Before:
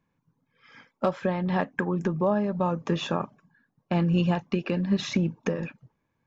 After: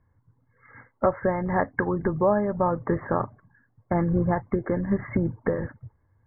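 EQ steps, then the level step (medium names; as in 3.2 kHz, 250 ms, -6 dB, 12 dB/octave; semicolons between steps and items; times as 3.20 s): brick-wall FIR low-pass 2.2 kHz; distance through air 230 m; resonant low shelf 130 Hz +9 dB, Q 3; +5.0 dB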